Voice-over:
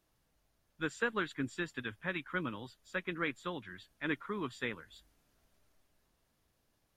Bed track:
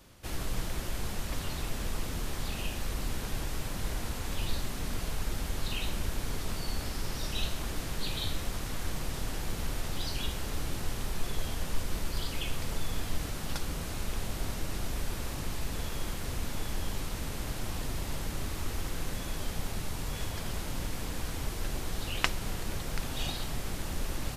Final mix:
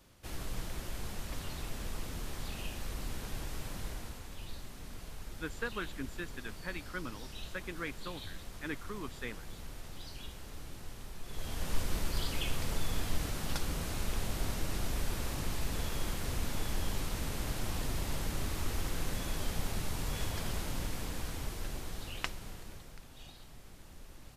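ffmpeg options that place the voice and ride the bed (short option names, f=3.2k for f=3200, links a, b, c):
-filter_complex "[0:a]adelay=4600,volume=-4.5dB[a];[1:a]volume=6dB,afade=t=out:st=3.75:d=0.54:silence=0.473151,afade=t=in:st=11.25:d=0.51:silence=0.266073,afade=t=out:st=20.41:d=2.6:silence=0.133352[b];[a][b]amix=inputs=2:normalize=0"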